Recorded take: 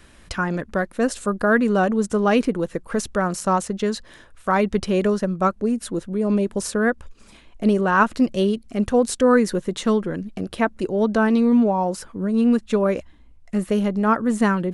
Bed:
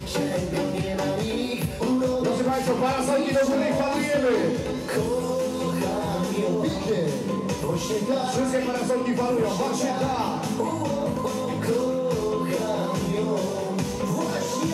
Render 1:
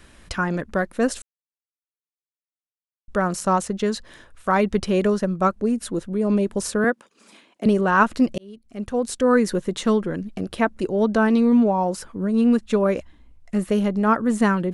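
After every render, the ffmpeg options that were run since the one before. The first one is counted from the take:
-filter_complex "[0:a]asettb=1/sr,asplit=3[s0][s1][s2];[s0]atrim=end=6.844[s3];[s1]atrim=start=6.84:end=7.66,asetpts=PTS-STARTPTS,afade=t=in:d=0.004:c=qsin,afade=t=out:st=0.816:d=0.004:c=qsin,highpass=f=210:w=0.5412,highpass=f=210:w=1.3066[s4];[s2]atrim=start=7.656[s5];[s3][s4]acrossfade=d=0.004:c1=hsin:c2=qsin[s6];[s6][s5]acrossfade=d=0.004:c1=qsin:c2=hsin,asplit=4[s7][s8][s9][s10];[s7]atrim=end=1.22,asetpts=PTS-STARTPTS,afade=t=out:st=1.216:d=0.004:c=hsin[s11];[s8]atrim=start=1.22:end=3.08,asetpts=PTS-STARTPTS,volume=0[s12];[s9]atrim=start=3.08:end=8.38,asetpts=PTS-STARTPTS,afade=t=in:d=0.004:c=hsin,afade=t=out:st=5.296:d=0.004:c=hsin[s13];[s10]atrim=start=8.38,asetpts=PTS-STARTPTS,afade=t=in:d=1.13[s14];[s11][s12][s13][s14]concat=n=4:v=0:a=1"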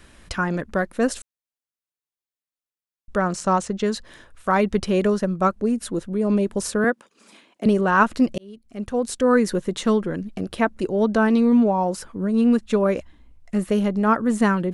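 -filter_complex "[0:a]asettb=1/sr,asplit=3[s0][s1][s2];[s0]atrim=end=3.184[s3];[s1]atrim=start=3.18:end=3.84,asetpts=PTS-STARTPTS,afade=t=in:d=0.004:c=qsin,afade=t=out:st=0.656:d=0.004:c=qsin,lowpass=f=8600:w=0.5412,lowpass=f=8600:w=1.3066[s4];[s2]atrim=start=3.836[s5];[s3][s4]acrossfade=d=0.004:c1=hsin:c2=qsin[s6];[s6][s5]acrossfade=d=0.004:c1=qsin:c2=hsin"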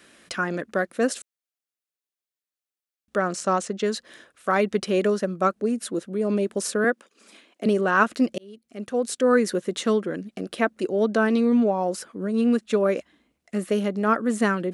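-af "highpass=250,equalizer=f=930:w=3.5:g=-7.5"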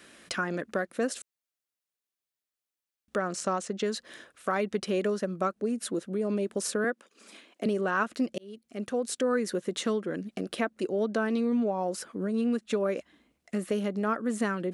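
-af "acompressor=threshold=0.0316:ratio=2"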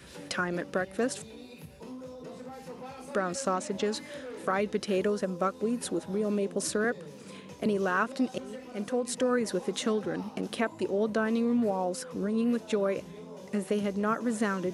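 -filter_complex "[1:a]volume=0.1[s0];[0:a][s0]amix=inputs=2:normalize=0"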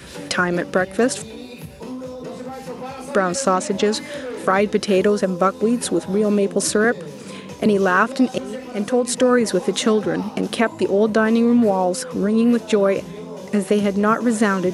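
-af "volume=3.76,alimiter=limit=0.708:level=0:latency=1"

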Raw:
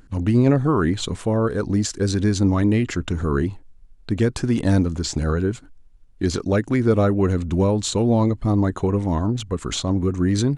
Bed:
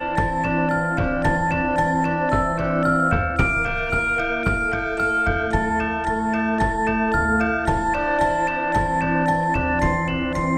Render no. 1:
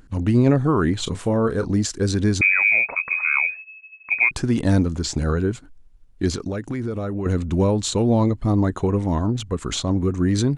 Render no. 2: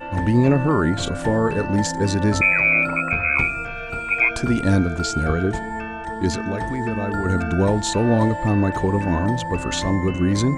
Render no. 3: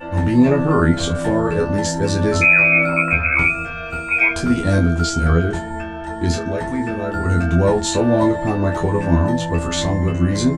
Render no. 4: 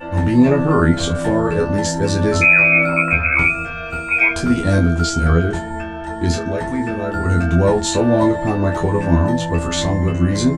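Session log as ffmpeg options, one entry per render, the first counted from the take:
-filter_complex "[0:a]asettb=1/sr,asplit=3[s0][s1][s2];[s0]atrim=end=1.034[s3];[s1]atrim=start=1.03:end=1.72,asetpts=PTS-STARTPTS,afade=t=in:d=0.004:c=qsin,afade=t=out:st=0.686:d=0.004:c=qsin,asplit=2[s4][s5];[s5]adelay=31,volume=0.282[s6];[s4][s6]amix=inputs=2:normalize=0,atrim=end_sample=30429[s7];[s2]atrim=start=1.716[s8];[s3][s7]acrossfade=d=0.004:c1=hsin:c2=qsin[s9];[s9][s8]acrossfade=d=0.004:c1=qsin:c2=hsin,asettb=1/sr,asplit=3[s10][s11][s12];[s10]atrim=end=2.414[s13];[s11]atrim=start=2.41:end=4.31,asetpts=PTS-STARTPTS,afade=t=in:d=0.004:c=qsin,afade=t=out:st=1.896:d=0.004:c=qsin,lowpass=f=2200:t=q:w=0.5098,lowpass=f=2200:t=q:w=0.6013,lowpass=f=2200:t=q:w=0.9,lowpass=f=2200:t=q:w=2.563,afreqshift=-2600[s14];[s12]atrim=start=4.306[s15];[s13][s14]acrossfade=d=0.004:c1=hsin:c2=qsin[s16];[s16][s15]acrossfade=d=0.004:c1=qsin:c2=hsin,asettb=1/sr,asplit=3[s17][s18][s19];[s17]atrim=end=6.304[s20];[s18]atrim=start=6.3:end=7.26,asetpts=PTS-STARTPTS,afade=t=in:d=0.004:c=qsin,afade=t=out:st=0.956:d=0.004:c=qsin,acompressor=threshold=0.0794:ratio=12:attack=3.2:release=140:knee=1:detection=peak[s21];[s19]atrim=start=7.256[s22];[s20][s21]acrossfade=d=0.004:c1=hsin:c2=qsin[s23];[s23][s22]acrossfade=d=0.004:c1=qsin:c2=hsin"
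-filter_complex "[1:a]volume=0.447[s0];[0:a][s0]amix=inputs=2:normalize=0"
-filter_complex "[0:a]asplit=2[s0][s1];[s1]adelay=24,volume=0.631[s2];[s0][s2]amix=inputs=2:normalize=0,asplit=2[s3][s4];[s4]aecho=0:1:12|51:0.631|0.141[s5];[s3][s5]amix=inputs=2:normalize=0"
-af "volume=1.12"

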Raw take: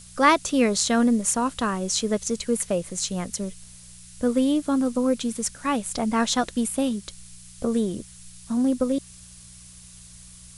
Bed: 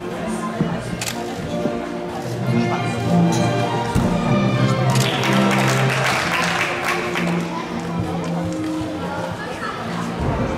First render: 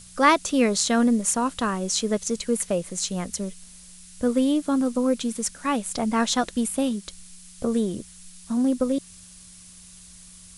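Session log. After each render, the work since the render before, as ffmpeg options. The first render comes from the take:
-af "bandreject=f=60:t=h:w=4,bandreject=f=120:t=h:w=4"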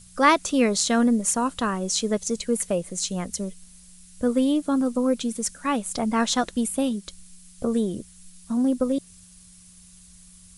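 -af "afftdn=nr=6:nf=-47"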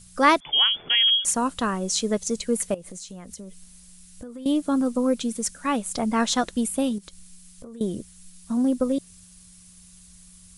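-filter_complex "[0:a]asettb=1/sr,asplit=3[s0][s1][s2];[s0]atrim=end=0.404[s3];[s1]atrim=start=0.4:end=1.25,asetpts=PTS-STARTPTS,afade=t=in:d=0.004:c=qsin,afade=t=out:st=0.846:d=0.004:c=qsin,lowpass=f=3000:t=q:w=0.5098,lowpass=f=3000:t=q:w=0.6013,lowpass=f=3000:t=q:w=0.9,lowpass=f=3000:t=q:w=2.563,afreqshift=-3500[s4];[s2]atrim=start=1.246[s5];[s3][s4]acrossfade=d=0.004:c1=hsin:c2=qsin[s6];[s6][s5]acrossfade=d=0.004:c1=qsin:c2=hsin,asettb=1/sr,asplit=3[s7][s8][s9];[s7]atrim=end=2.744[s10];[s8]atrim=start=2.74:end=4.46,asetpts=PTS-STARTPTS,afade=t=in:d=0.004:c=qsin,afade=t=out:st=1.716:d=0.004:c=qsin,acompressor=threshold=0.0178:ratio=10:attack=3.2:release=140:knee=1:detection=peak[s11];[s9]atrim=start=4.456[s12];[s10][s11]acrossfade=d=0.004:c1=hsin:c2=qsin[s13];[s13][s12]acrossfade=d=0.004:c1=qsin:c2=hsin,asettb=1/sr,asplit=3[s14][s15][s16];[s14]atrim=end=6.984[s17];[s15]atrim=start=6.98:end=7.81,asetpts=PTS-STARTPTS,afade=t=in:d=0.004:c=qsin,afade=t=out:st=0.826:d=0.004:c=qsin,acompressor=threshold=0.0112:ratio=6:attack=3.2:release=140:knee=1:detection=peak[s18];[s16]atrim=start=7.806[s19];[s17][s18]acrossfade=d=0.004:c1=hsin:c2=qsin[s20];[s20][s19]acrossfade=d=0.004:c1=qsin:c2=hsin"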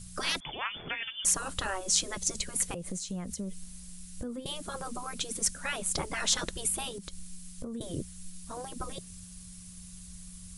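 -af "afftfilt=real='re*lt(hypot(re,im),0.178)':imag='im*lt(hypot(re,im),0.178)':win_size=1024:overlap=0.75,bass=f=250:g=6,treble=f=4000:g=1"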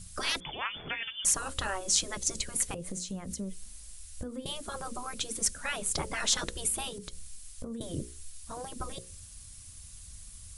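-af "equalizer=f=80:t=o:w=0.77:g=3.5,bandreject=f=60:t=h:w=6,bandreject=f=120:t=h:w=6,bandreject=f=180:t=h:w=6,bandreject=f=240:t=h:w=6,bandreject=f=300:t=h:w=6,bandreject=f=360:t=h:w=6,bandreject=f=420:t=h:w=6,bandreject=f=480:t=h:w=6,bandreject=f=540:t=h:w=6"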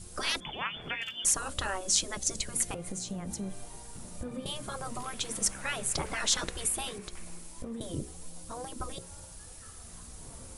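-filter_complex "[1:a]volume=0.0282[s0];[0:a][s0]amix=inputs=2:normalize=0"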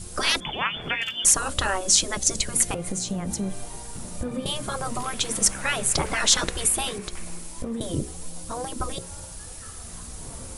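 -af "volume=2.66,alimiter=limit=0.891:level=0:latency=1"

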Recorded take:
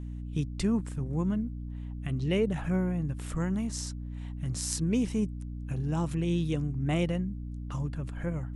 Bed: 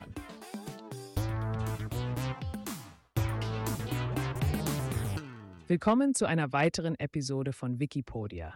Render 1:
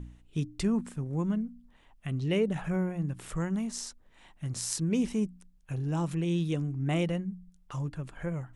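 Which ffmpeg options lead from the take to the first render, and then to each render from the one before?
-af "bandreject=f=60:t=h:w=4,bandreject=f=120:t=h:w=4,bandreject=f=180:t=h:w=4,bandreject=f=240:t=h:w=4,bandreject=f=300:t=h:w=4"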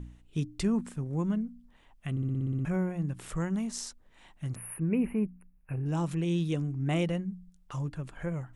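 -filter_complex "[0:a]asettb=1/sr,asplit=3[s0][s1][s2];[s0]atrim=end=4.554[s3];[s1]atrim=start=4.55:end=5.86,asetpts=PTS-STARTPTS,afade=t=in:d=0.004:c=qsin,afade=t=out:st=1.306:d=0.004:c=qsin,asuperstop=centerf=5400:order=20:qfactor=0.77[s4];[s2]atrim=start=5.856[s5];[s3][s4]acrossfade=d=0.004:c1=hsin:c2=qsin[s6];[s6][s5]acrossfade=d=0.004:c1=qsin:c2=hsin,asplit=10[s7][s8][s9][s10][s11][s12][s13][s14][s15][s16];[s7]atrim=end=2.172[s17];[s8]atrim=start=2.108:end=2.172[s18];[s9]atrim=start=2.108:end=2.172[s19];[s10]atrim=start=2.108:end=2.172[s20];[s11]atrim=start=2.108:end=2.172[s21];[s12]atrim=start=2.108:end=2.172[s22];[s13]atrim=start=2.108:end=2.172[s23];[s14]atrim=start=2.108:end=2.172[s24];[s15]atrim=start=2.108:end=2.172[s25];[s16]atrim=start=2.648[s26];[s17][s18]acrossfade=d=0.004:c1=hsin:c2=hsin[s27];[s27][s19]acrossfade=d=0.004:c1=hsin:c2=hsin[s28];[s28][s20]acrossfade=d=0.004:c1=hsin:c2=hsin[s29];[s29][s21]acrossfade=d=0.004:c1=hsin:c2=hsin[s30];[s30][s22]acrossfade=d=0.004:c1=hsin:c2=hsin[s31];[s31][s23]acrossfade=d=0.004:c1=hsin:c2=hsin[s32];[s32][s24]acrossfade=d=0.004:c1=hsin:c2=hsin[s33];[s33][s25]acrossfade=d=0.004:c1=hsin:c2=hsin[s34];[s34][s26]acrossfade=d=0.004:c1=hsin:c2=hsin"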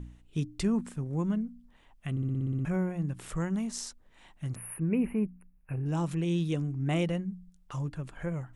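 -af anull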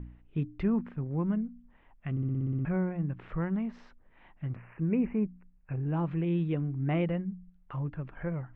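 -af "lowpass=f=2400:w=0.5412,lowpass=f=2400:w=1.3066"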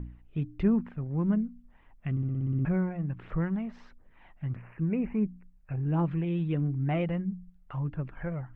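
-af "aphaser=in_gain=1:out_gain=1:delay=1.7:decay=0.35:speed=1.5:type=triangular"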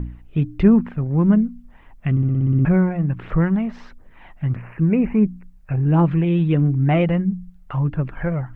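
-af "volume=3.76"

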